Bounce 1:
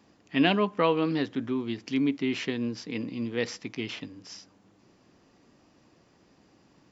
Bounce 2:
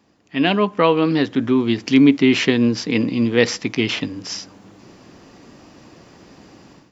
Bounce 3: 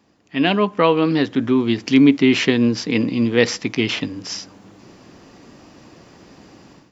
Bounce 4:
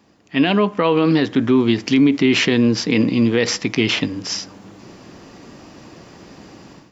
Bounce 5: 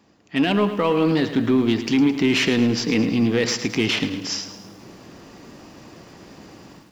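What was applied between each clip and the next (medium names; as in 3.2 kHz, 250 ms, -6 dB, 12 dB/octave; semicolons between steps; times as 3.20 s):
level rider gain up to 15 dB; trim +1 dB
no audible change
peak limiter -10 dBFS, peak gain reduction 8 dB; on a send at -20 dB: reverberation RT60 0.55 s, pre-delay 3 ms; on the sum: trim +4 dB
in parallel at -4 dB: overload inside the chain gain 16 dB; on the sum: bit-crushed delay 108 ms, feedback 55%, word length 7-bit, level -11.5 dB; trim -6.5 dB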